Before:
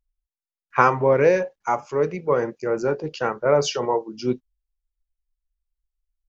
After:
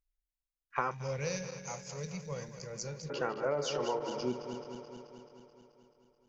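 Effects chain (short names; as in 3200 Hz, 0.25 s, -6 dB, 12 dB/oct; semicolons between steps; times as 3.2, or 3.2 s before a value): regenerating reverse delay 0.108 s, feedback 81%, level -11 dB; 0.91–3.1 EQ curve 190 Hz 0 dB, 310 Hz -25 dB, 510 Hz -12 dB, 1300 Hz -17 dB, 4700 Hz +12 dB; compressor 6:1, threshold -21 dBFS, peak gain reduction 10.5 dB; bell 110 Hz -5 dB 0.27 oct; gain -8 dB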